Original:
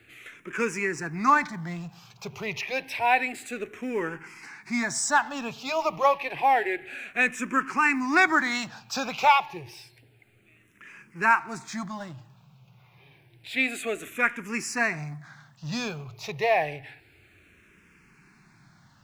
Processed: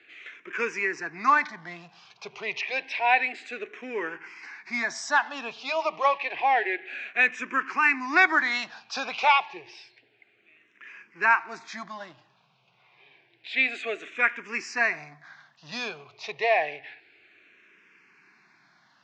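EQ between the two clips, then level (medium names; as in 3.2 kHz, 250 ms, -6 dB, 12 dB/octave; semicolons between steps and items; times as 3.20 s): distance through air 120 m; cabinet simulation 500–6500 Hz, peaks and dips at 540 Hz -5 dB, 860 Hz -5 dB, 1.3 kHz -5 dB; +4.0 dB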